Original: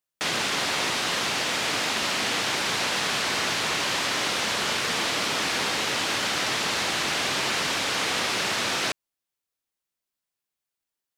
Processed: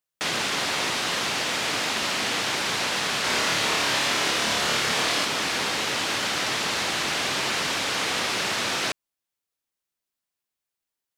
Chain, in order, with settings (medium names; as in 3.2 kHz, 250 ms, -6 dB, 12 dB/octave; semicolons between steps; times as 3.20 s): 3.21–5.25 s: flutter echo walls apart 4.8 m, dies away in 0.44 s